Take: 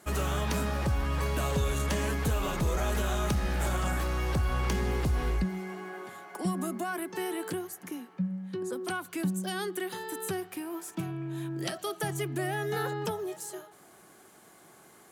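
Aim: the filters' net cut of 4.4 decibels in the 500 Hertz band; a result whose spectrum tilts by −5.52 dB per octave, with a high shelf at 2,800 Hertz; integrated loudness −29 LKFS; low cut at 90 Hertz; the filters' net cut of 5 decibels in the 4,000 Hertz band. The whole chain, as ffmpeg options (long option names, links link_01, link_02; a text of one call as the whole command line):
ffmpeg -i in.wav -af "highpass=90,equalizer=frequency=500:width_type=o:gain=-6,highshelf=frequency=2800:gain=-4.5,equalizer=frequency=4000:width_type=o:gain=-3,volume=6.5dB" out.wav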